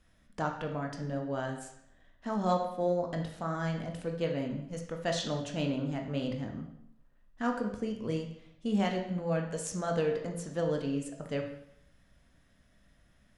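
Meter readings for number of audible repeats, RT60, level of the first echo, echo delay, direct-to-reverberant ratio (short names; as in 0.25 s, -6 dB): none, 0.75 s, none, none, 2.0 dB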